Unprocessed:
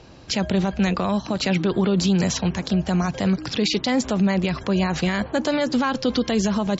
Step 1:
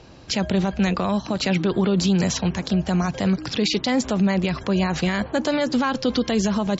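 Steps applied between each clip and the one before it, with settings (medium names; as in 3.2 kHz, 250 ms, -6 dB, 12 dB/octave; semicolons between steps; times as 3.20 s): no audible change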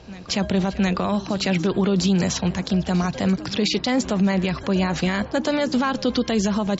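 reverse echo 711 ms -18 dB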